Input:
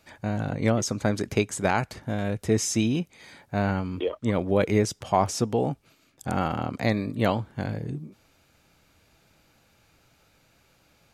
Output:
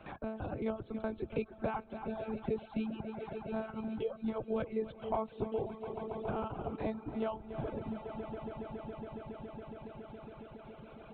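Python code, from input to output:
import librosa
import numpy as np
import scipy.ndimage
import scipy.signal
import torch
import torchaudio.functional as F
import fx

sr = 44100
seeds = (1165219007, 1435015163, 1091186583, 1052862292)

y = fx.air_absorb(x, sr, metres=270.0)
y = fx.lpc_monotone(y, sr, seeds[0], pitch_hz=220.0, order=10)
y = fx.highpass(y, sr, hz=84.0, slope=6)
y = fx.peak_eq(y, sr, hz=1900.0, db=-13.0, octaves=0.39)
y = fx.echo_swell(y, sr, ms=139, loudest=5, wet_db=-17)
y = fx.dereverb_blind(y, sr, rt60_s=1.1)
y = y + 10.0 ** (-15.0 / 20.0) * np.pad(y, (int(283 * sr / 1000.0), 0))[:len(y)]
y = fx.band_squash(y, sr, depth_pct=70)
y = F.gain(torch.from_numpy(y), -7.0).numpy()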